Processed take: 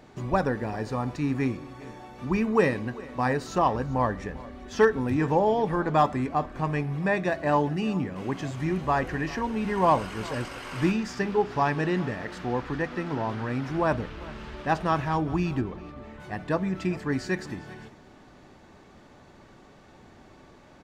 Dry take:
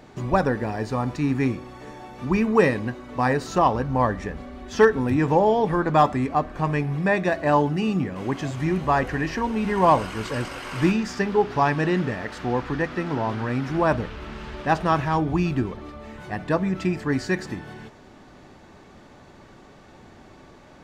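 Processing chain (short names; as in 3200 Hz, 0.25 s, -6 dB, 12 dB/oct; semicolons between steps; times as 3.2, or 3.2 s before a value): 15.61–16.2 high shelf 4500 Hz -9 dB; on a send: echo 0.398 s -20 dB; on the sum: gain -4 dB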